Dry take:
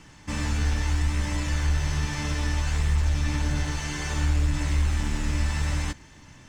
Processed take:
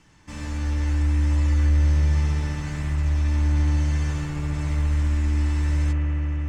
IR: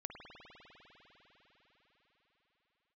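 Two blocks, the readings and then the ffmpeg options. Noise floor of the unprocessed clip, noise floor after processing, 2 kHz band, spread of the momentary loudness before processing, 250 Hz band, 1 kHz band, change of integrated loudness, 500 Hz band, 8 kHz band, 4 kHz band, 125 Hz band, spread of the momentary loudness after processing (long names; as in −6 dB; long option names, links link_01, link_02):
−50 dBFS, −36 dBFS, −4.0 dB, 5 LU, +2.5 dB, −3.0 dB, +3.5 dB, 0.0 dB, −7.0 dB, −7.0 dB, +4.5 dB, 8 LU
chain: -filter_complex "[1:a]atrim=start_sample=2205,asetrate=32634,aresample=44100[link_01];[0:a][link_01]afir=irnorm=-1:irlink=0,volume=-3dB"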